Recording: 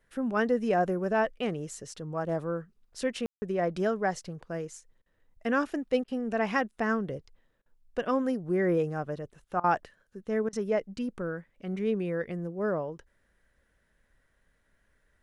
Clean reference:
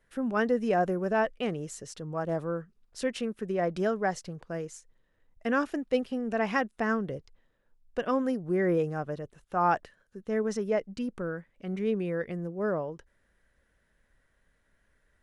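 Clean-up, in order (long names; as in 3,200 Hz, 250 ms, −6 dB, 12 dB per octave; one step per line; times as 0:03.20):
ambience match 0:03.26–0:03.42
repair the gap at 0:05.02/0:06.04/0:07.62/0:09.60/0:10.49, 38 ms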